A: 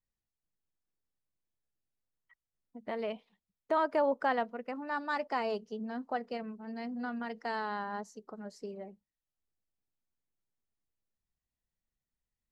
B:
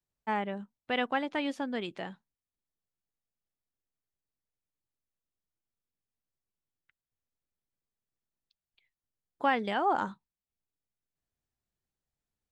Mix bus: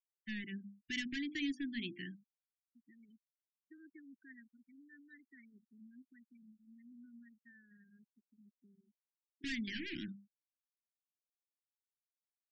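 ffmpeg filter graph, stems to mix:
ffmpeg -i stem1.wav -i stem2.wav -filter_complex "[0:a]lowpass=frequency=5300:width=0.5412,lowpass=frequency=5300:width=1.3066,volume=-18dB[link_01];[1:a]bandreject=frequency=50:width_type=h:width=6,bandreject=frequency=100:width_type=h:width=6,bandreject=frequency=150:width_type=h:width=6,bandreject=frequency=200:width_type=h:width=6,bandreject=frequency=250:width_type=h:width=6,bandreject=frequency=300:width_type=h:width=6,bandreject=frequency=350:width_type=h:width=6,volume=29.5dB,asoftclip=hard,volume=-29.5dB,volume=-2dB[link_02];[link_01][link_02]amix=inputs=2:normalize=0,afftfilt=real='re*gte(hypot(re,im),0.00398)':imag='im*gte(hypot(re,im),0.00398)':win_size=1024:overlap=0.75,asuperstop=centerf=770:order=20:qfactor=0.58" out.wav

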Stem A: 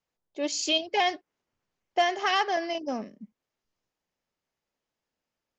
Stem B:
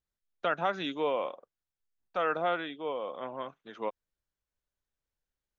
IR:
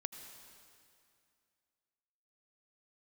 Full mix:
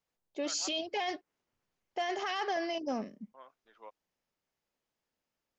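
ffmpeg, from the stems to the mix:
-filter_complex "[0:a]volume=-1.5dB,asplit=2[link_01][link_02];[1:a]highpass=770,aemphasis=mode=reproduction:type=riaa,volume=-12.5dB,asplit=3[link_03][link_04][link_05];[link_03]atrim=end=0.68,asetpts=PTS-STARTPTS,afade=type=out:start_time=0.676:duration=0.004:curve=hsin[link_06];[link_04]atrim=start=0.68:end=3.34,asetpts=PTS-STARTPTS,volume=0[link_07];[link_05]atrim=start=3.34,asetpts=PTS-STARTPTS,afade=type=in:duration=0.004:curve=hsin[link_08];[link_06][link_07][link_08]concat=n=3:v=0:a=1[link_09];[link_02]apad=whole_len=246121[link_10];[link_09][link_10]sidechaincompress=threshold=-29dB:ratio=8:attack=16:release=220[link_11];[link_01][link_11]amix=inputs=2:normalize=0,alimiter=level_in=1.5dB:limit=-24dB:level=0:latency=1:release=13,volume=-1.5dB"

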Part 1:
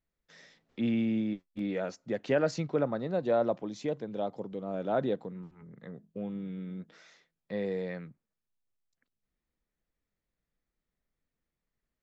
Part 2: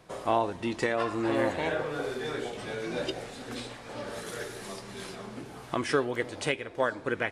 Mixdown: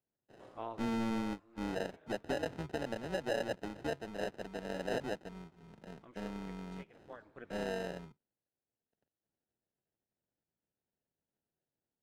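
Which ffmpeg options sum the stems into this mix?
ffmpeg -i stem1.wav -i stem2.wav -filter_complex "[0:a]lowshelf=frequency=200:gain=-6,acrusher=samples=39:mix=1:aa=0.000001,highpass=frequency=77:width=0.5412,highpass=frequency=77:width=1.3066,volume=0dB,asplit=2[link_01][link_02];[1:a]adelay=300,volume=-15.5dB[link_03];[link_02]apad=whole_len=335685[link_04];[link_03][link_04]sidechaincompress=threshold=-46dB:ratio=5:attack=20:release=1310[link_05];[link_01][link_05]amix=inputs=2:normalize=0,tremolo=f=230:d=0.667,aemphasis=mode=reproduction:type=50fm,alimiter=limit=-24dB:level=0:latency=1:release=256" out.wav

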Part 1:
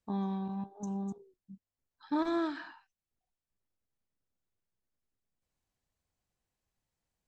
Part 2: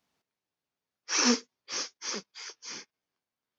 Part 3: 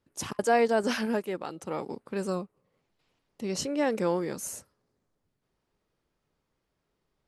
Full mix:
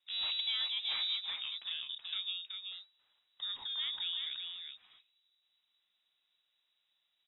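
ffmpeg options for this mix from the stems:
ffmpeg -i stem1.wav -i stem2.wav -i stem3.wav -filter_complex "[0:a]aeval=exprs='abs(val(0))':channel_layout=same,volume=-3dB,asplit=3[link_01][link_02][link_03];[link_01]atrim=end=2.09,asetpts=PTS-STARTPTS,afade=type=out:start_time=2.086:duration=0.004:curve=hsin[link_04];[link_02]atrim=start=2.09:end=2.71,asetpts=PTS-STARTPTS,volume=0[link_05];[link_03]atrim=start=2.71,asetpts=PTS-STARTPTS,afade=type=in:duration=0.004:curve=hsin[link_06];[link_04][link_05][link_06]concat=n=3:v=0:a=1[link_07];[2:a]acompressor=threshold=-36dB:ratio=3,volume=-2.5dB,asplit=2[link_08][link_09];[link_09]volume=-5dB,aecho=0:1:376:1[link_10];[link_07][link_08][link_10]amix=inputs=3:normalize=0,lowpass=frequency=3300:width_type=q:width=0.5098,lowpass=frequency=3300:width_type=q:width=0.6013,lowpass=frequency=3300:width_type=q:width=0.9,lowpass=frequency=3300:width_type=q:width=2.563,afreqshift=-3900" out.wav

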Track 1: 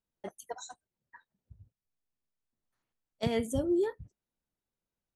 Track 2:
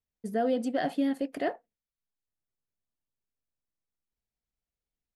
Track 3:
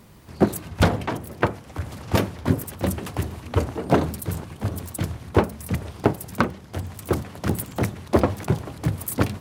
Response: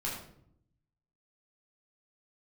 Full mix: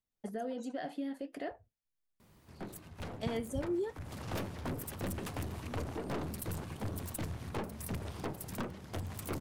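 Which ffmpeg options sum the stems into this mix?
-filter_complex "[0:a]volume=-6.5dB[link_01];[1:a]flanger=delay=6.3:depth=8.4:regen=-69:speed=0.7:shape=triangular,volume=-1dB,asplit=2[link_02][link_03];[2:a]alimiter=limit=-8.5dB:level=0:latency=1:release=365,aeval=exprs='(tanh(20*val(0)+0.35)-tanh(0.35))/20':channel_layout=same,adelay=2200,volume=-1.5dB,afade=type=in:start_time=4.01:duration=0.28:silence=0.298538[link_04];[link_03]apad=whole_len=227274[link_05];[link_01][link_05]sidechaincompress=threshold=-37dB:ratio=8:attack=16:release=1030[link_06];[link_02][link_04]amix=inputs=2:normalize=0,lowshelf=frequency=89:gain=-8,acompressor=threshold=-40dB:ratio=2,volume=0dB[link_07];[link_06][link_07]amix=inputs=2:normalize=0,lowshelf=frequency=61:gain=9"

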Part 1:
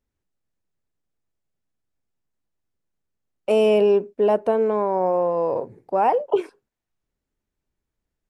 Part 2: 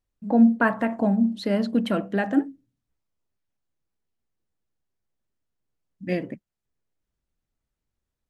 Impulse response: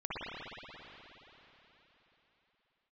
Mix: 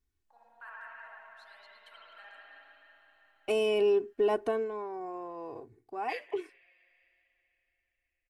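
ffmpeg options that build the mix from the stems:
-filter_complex "[0:a]aecho=1:1:2.7:0.79,volume=-3dB,afade=type=out:start_time=4.48:duration=0.2:silence=0.354813,asplit=2[link_01][link_02];[1:a]highpass=frequency=830:width=0.5412,highpass=frequency=830:width=1.3066,volume=-2.5dB,asplit=2[link_03][link_04];[link_04]volume=-18.5dB[link_05];[link_02]apad=whole_len=365781[link_06];[link_03][link_06]sidechaingate=range=-34dB:threshold=-44dB:ratio=16:detection=peak[link_07];[2:a]atrim=start_sample=2205[link_08];[link_05][link_08]afir=irnorm=-1:irlink=0[link_09];[link_01][link_07][link_09]amix=inputs=3:normalize=0,equalizer=frequency=590:width_type=o:width=1.5:gain=-9.5,alimiter=limit=-19.5dB:level=0:latency=1:release=83"

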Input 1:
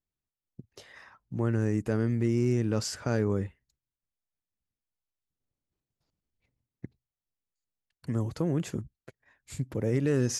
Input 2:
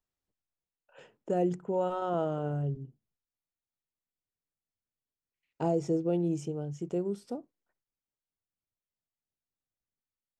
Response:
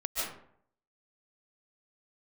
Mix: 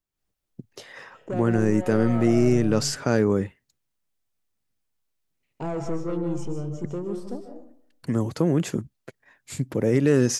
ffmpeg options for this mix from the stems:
-filter_complex "[0:a]highpass=180,volume=-0.5dB,asplit=2[link_01][link_02];[1:a]asoftclip=type=tanh:threshold=-28dB,volume=-8.5dB,asplit=2[link_03][link_04];[link_04]volume=-7dB[link_05];[link_02]apad=whole_len=458566[link_06];[link_03][link_06]sidechaincompress=threshold=-35dB:ratio=8:attack=16:release=459[link_07];[2:a]atrim=start_sample=2205[link_08];[link_05][link_08]afir=irnorm=-1:irlink=0[link_09];[link_01][link_07][link_09]amix=inputs=3:normalize=0,lowshelf=frequency=110:gain=8,dynaudnorm=framelen=110:gausssize=3:maxgain=8dB"

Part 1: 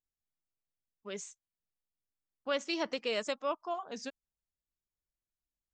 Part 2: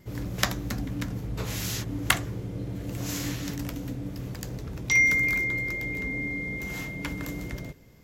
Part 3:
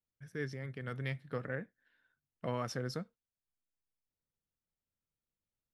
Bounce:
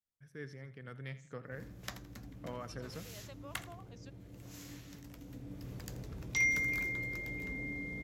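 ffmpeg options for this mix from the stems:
ffmpeg -i stem1.wav -i stem2.wav -i stem3.wav -filter_complex "[0:a]acompressor=threshold=-35dB:ratio=2,volume=-15dB[link_01];[1:a]adelay=1450,volume=-9dB,afade=type=in:start_time=5.13:duration=0.67:silence=0.334965,asplit=2[link_02][link_03];[link_03]volume=-17dB[link_04];[2:a]volume=-7dB,asplit=3[link_05][link_06][link_07];[link_06]volume=-15.5dB[link_08];[link_07]apad=whole_len=253334[link_09];[link_01][link_09]sidechaincompress=threshold=-49dB:ratio=8:attack=16:release=413[link_10];[link_04][link_08]amix=inputs=2:normalize=0,aecho=0:1:83|166|249|332|415:1|0.36|0.13|0.0467|0.0168[link_11];[link_10][link_02][link_05][link_11]amix=inputs=4:normalize=0" out.wav

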